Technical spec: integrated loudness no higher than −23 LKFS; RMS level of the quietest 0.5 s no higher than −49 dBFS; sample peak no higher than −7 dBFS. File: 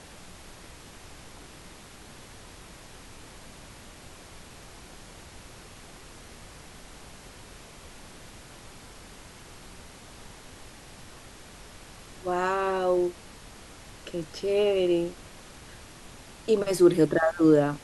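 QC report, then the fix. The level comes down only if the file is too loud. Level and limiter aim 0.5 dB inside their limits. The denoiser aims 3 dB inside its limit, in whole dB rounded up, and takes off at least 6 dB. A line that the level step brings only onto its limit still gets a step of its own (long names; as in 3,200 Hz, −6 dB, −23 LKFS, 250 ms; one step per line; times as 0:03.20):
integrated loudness −25.0 LKFS: in spec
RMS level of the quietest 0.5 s −47 dBFS: out of spec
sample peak −9.0 dBFS: in spec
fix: broadband denoise 6 dB, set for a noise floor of −47 dBFS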